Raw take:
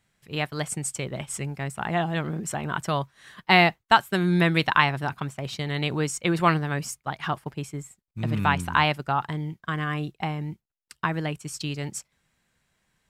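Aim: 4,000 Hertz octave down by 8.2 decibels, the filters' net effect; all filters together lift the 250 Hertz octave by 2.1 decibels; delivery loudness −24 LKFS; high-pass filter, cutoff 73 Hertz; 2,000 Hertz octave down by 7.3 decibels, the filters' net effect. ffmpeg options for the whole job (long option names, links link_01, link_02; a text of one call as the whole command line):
ffmpeg -i in.wav -af "highpass=73,equalizer=frequency=250:width_type=o:gain=4,equalizer=frequency=2000:width_type=o:gain=-7.5,equalizer=frequency=4000:width_type=o:gain=-8,volume=3dB" out.wav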